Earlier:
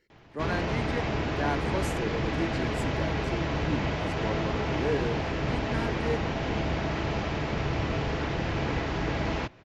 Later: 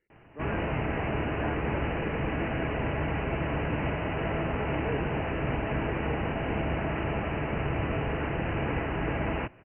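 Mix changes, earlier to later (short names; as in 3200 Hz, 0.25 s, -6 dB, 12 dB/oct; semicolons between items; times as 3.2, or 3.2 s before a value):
speech -8.0 dB; master: add Chebyshev low-pass 2900 Hz, order 8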